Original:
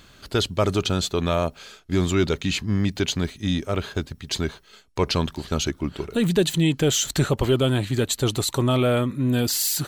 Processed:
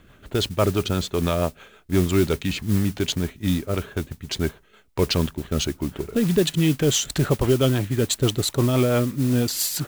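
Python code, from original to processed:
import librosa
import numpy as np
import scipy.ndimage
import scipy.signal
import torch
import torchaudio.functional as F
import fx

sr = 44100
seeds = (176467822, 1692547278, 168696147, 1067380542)

y = fx.wiener(x, sr, points=9)
y = fx.rotary(y, sr, hz=6.0)
y = fx.mod_noise(y, sr, seeds[0], snr_db=18)
y = F.gain(torch.from_numpy(y), 2.5).numpy()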